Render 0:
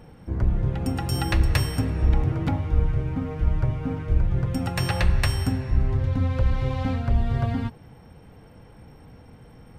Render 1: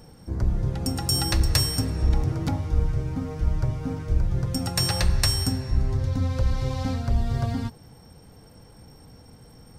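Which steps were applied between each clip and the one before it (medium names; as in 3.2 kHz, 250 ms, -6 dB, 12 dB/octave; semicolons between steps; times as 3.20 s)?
resonant high shelf 3.8 kHz +10 dB, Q 1.5; trim -1.5 dB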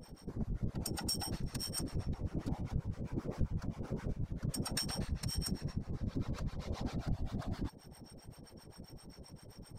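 compression 5:1, threshold -31 dBFS, peak gain reduction 14.5 dB; harmonic tremolo 7.6 Hz, depth 100%, crossover 640 Hz; whisper effect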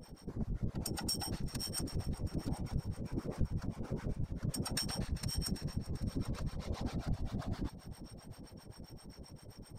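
multi-head delay 394 ms, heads first and second, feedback 55%, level -19 dB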